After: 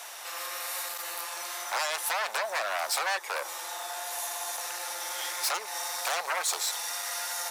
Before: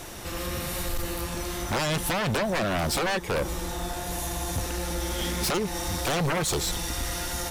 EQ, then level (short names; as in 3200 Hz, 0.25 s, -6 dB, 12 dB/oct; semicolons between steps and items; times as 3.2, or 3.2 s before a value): HPF 700 Hz 24 dB/oct; dynamic EQ 3100 Hz, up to -5 dB, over -46 dBFS, Q 3.2; 0.0 dB